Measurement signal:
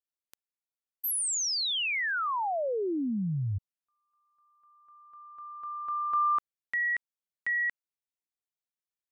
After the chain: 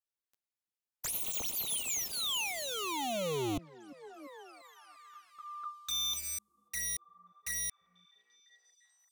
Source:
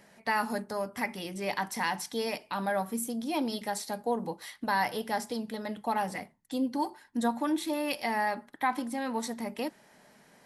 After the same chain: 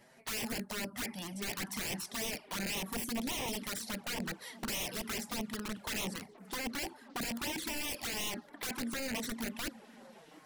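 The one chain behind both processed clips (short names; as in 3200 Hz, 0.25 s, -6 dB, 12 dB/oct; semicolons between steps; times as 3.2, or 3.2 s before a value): wrapped overs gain 29 dB; delay with a stepping band-pass 0.345 s, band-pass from 220 Hz, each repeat 0.7 oct, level -10.5 dB; envelope flanger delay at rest 9.3 ms, full sweep at -30.5 dBFS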